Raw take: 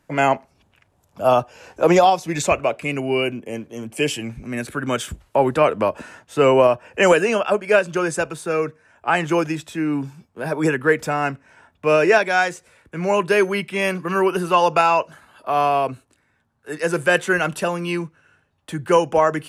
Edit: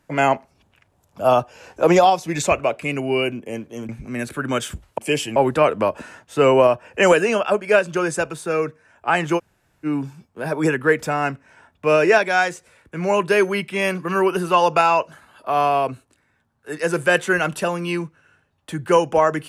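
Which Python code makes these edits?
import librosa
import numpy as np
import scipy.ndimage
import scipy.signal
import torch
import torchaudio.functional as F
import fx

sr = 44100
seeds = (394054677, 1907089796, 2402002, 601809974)

y = fx.edit(x, sr, fx.move(start_s=3.89, length_s=0.38, to_s=5.36),
    fx.room_tone_fill(start_s=9.38, length_s=0.47, crossfade_s=0.04), tone=tone)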